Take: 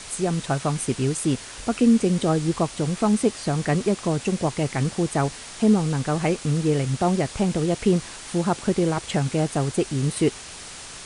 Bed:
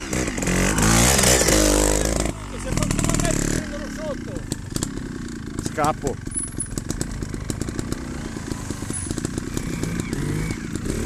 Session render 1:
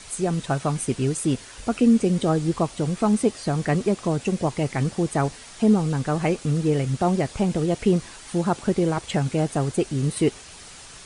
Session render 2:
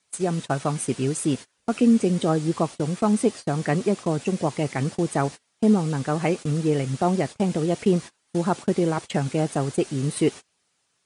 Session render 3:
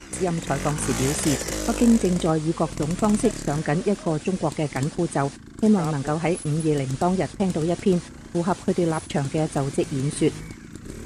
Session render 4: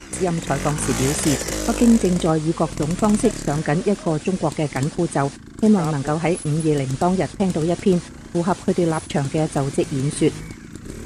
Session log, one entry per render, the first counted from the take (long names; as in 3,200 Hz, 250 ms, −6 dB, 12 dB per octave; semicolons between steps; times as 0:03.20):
broadband denoise 6 dB, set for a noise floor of −39 dBFS
high-pass filter 130 Hz 12 dB per octave; noise gate −31 dBFS, range −28 dB
mix in bed −11.5 dB
level +3 dB